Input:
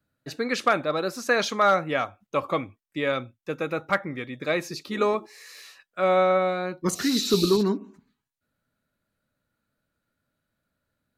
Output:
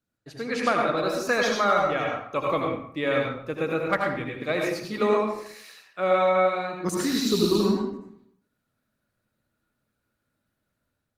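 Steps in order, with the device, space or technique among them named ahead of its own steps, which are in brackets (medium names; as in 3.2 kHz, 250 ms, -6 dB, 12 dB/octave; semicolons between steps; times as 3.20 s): speakerphone in a meeting room (reverberation RT60 0.65 s, pre-delay 74 ms, DRR -0.5 dB; level rider gain up to 6.5 dB; trim -7 dB; Opus 24 kbps 48 kHz)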